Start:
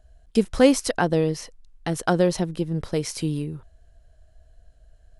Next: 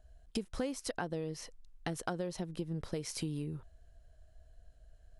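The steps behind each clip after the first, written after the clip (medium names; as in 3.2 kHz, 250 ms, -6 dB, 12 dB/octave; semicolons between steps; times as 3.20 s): compression 8:1, threshold -28 dBFS, peak gain reduction 17.5 dB; trim -5.5 dB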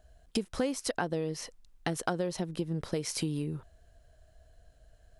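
bass shelf 74 Hz -9.5 dB; trim +6 dB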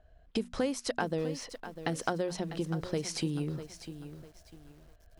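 level-controlled noise filter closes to 2.6 kHz, open at -26.5 dBFS; hum notches 60/120/180/240 Hz; bit-crushed delay 649 ms, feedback 35%, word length 9-bit, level -11.5 dB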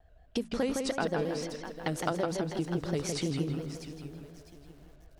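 on a send: filtered feedback delay 161 ms, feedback 42%, low-pass 3.9 kHz, level -4 dB; on the sum: vibrato with a chosen wave square 5.6 Hz, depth 100 cents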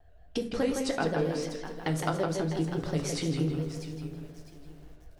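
simulated room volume 38 m³, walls mixed, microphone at 0.33 m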